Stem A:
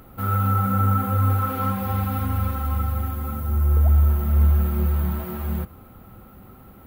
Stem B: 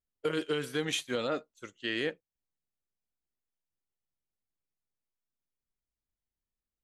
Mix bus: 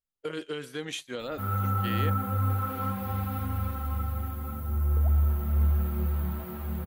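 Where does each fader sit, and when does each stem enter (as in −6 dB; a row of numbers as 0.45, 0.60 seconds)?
−7.0, −3.5 decibels; 1.20, 0.00 seconds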